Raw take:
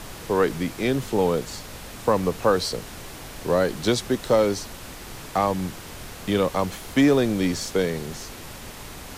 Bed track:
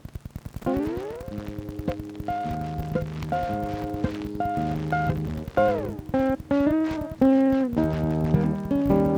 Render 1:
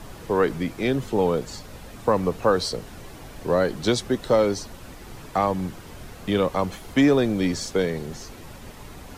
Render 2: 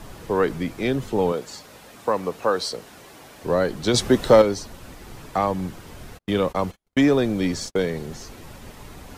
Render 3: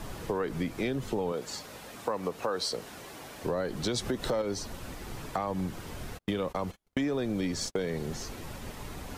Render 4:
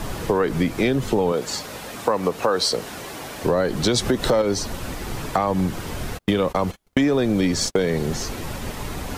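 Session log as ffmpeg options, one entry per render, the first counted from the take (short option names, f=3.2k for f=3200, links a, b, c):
-af "afftdn=nr=8:nf=-40"
-filter_complex "[0:a]asettb=1/sr,asplit=3[a][b][c];[a]atrim=end=1.324[d];[b]atrim=start=1.32:end=3.44,asetpts=PTS-STARTPTS,afade=t=in:d=0.004:c=qsin,afade=t=out:st=2.116:d=0.004:c=qsin,highpass=f=380:p=1[e];[c]atrim=start=3.436[f];[d][e]acrossfade=d=0.004:c1=hsin:c2=qsin[g];[g][f]acrossfade=d=0.004:c1=qsin:c2=hsin,asettb=1/sr,asplit=3[h][i][j];[h]atrim=end=3.944[k];[i]atrim=start=3.94:end=4.42,asetpts=PTS-STARTPTS,afade=t=in:d=0.004:c=qsin,afade=t=out:st=0.476:d=0.004:c=qsin,acontrast=84[l];[j]atrim=start=4.416[m];[k][l]acrossfade=d=0.004:c1=hsin:c2=qsin[n];[n][m]acrossfade=d=0.004:c1=qsin:c2=hsin,asplit=3[o][p][q];[o]afade=t=out:st=6.17:d=0.02[r];[p]agate=range=-46dB:threshold=-34dB:ratio=16:release=100:detection=peak,afade=t=in:st=6.17:d=0.02,afade=t=out:st=7.89:d=0.02[s];[q]afade=t=in:st=7.89:d=0.02[t];[r][s][t]amix=inputs=3:normalize=0"
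-af "alimiter=limit=-15dB:level=0:latency=1:release=141,acompressor=threshold=-29dB:ratio=3"
-af "volume=11dB"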